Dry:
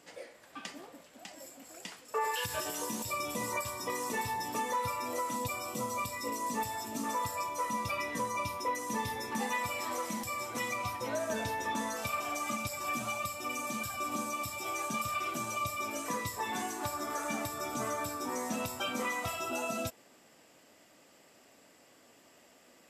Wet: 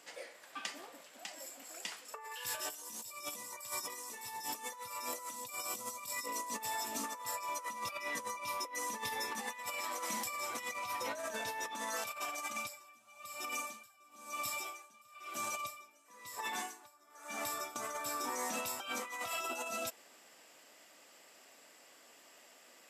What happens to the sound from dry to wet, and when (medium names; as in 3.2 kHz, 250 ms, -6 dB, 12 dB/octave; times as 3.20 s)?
2.70–6.26 s: tone controls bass +3 dB, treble +7 dB
12.50–17.76 s: logarithmic tremolo 1 Hz, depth 29 dB
whole clip: high-pass 820 Hz 6 dB/octave; compressor with a negative ratio -40 dBFS, ratio -0.5